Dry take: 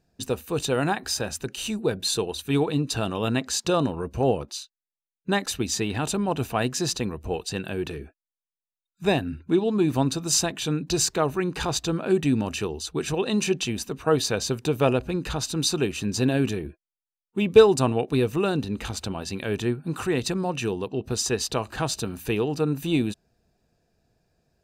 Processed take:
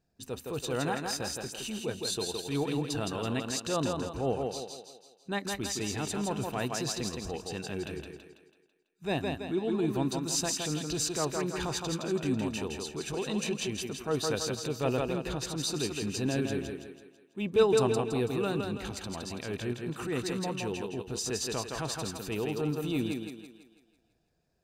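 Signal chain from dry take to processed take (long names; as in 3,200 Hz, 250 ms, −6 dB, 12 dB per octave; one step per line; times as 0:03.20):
feedback echo with a high-pass in the loop 165 ms, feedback 47%, high-pass 160 Hz, level −4 dB
transient designer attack −6 dB, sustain −2 dB
level −7 dB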